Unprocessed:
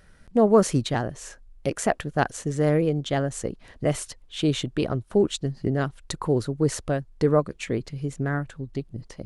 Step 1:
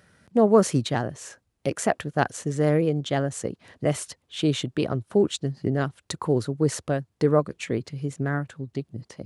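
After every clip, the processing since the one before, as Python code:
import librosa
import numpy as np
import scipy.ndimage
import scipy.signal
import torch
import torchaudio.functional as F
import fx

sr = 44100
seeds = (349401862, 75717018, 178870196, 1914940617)

y = scipy.signal.sosfilt(scipy.signal.butter(4, 86.0, 'highpass', fs=sr, output='sos'), x)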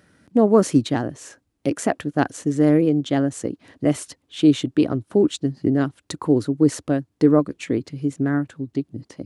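y = fx.peak_eq(x, sr, hz=290.0, db=11.5, octaves=0.5)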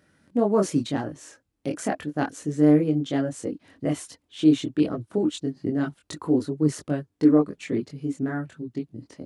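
y = fx.chorus_voices(x, sr, voices=6, hz=0.27, base_ms=23, depth_ms=3.6, mix_pct=45)
y = F.gain(torch.from_numpy(y), -2.0).numpy()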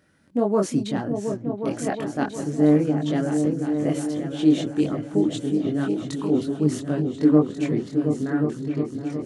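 y = fx.echo_opening(x, sr, ms=360, hz=200, octaves=2, feedback_pct=70, wet_db=-3)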